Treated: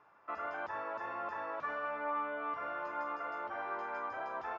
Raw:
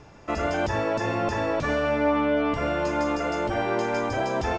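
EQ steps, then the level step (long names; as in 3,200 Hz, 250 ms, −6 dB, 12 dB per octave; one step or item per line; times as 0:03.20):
resonant band-pass 1,200 Hz, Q 2.5
high-frequency loss of the air 58 metres
−5.0 dB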